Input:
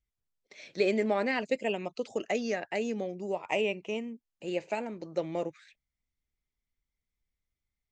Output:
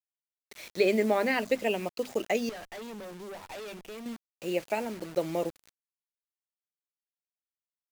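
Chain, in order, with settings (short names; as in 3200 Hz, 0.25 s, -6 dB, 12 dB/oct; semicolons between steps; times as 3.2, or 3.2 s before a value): notches 50/100/150/200/250 Hz; bit-crush 8-bit; 2.49–4.06 tube stage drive 42 dB, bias 0.65; gain +2.5 dB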